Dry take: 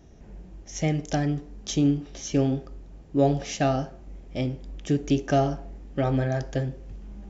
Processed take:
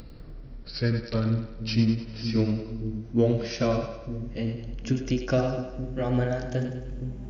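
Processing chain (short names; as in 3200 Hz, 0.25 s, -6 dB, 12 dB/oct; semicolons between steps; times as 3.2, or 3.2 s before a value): gliding pitch shift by -5.5 st ending unshifted; upward compressor, threshold -36 dBFS; split-band echo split 350 Hz, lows 0.464 s, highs 0.1 s, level -7.5 dB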